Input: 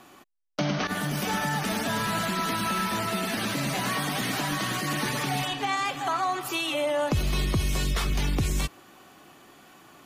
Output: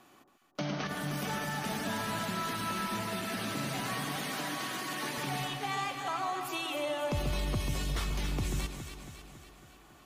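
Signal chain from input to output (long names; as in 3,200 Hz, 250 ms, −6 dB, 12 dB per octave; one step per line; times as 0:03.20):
0:04.16–0:05.18: high-pass filter 260 Hz 12 dB per octave
delay that swaps between a low-pass and a high-pass 138 ms, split 1,100 Hz, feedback 75%, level −5 dB
level −8 dB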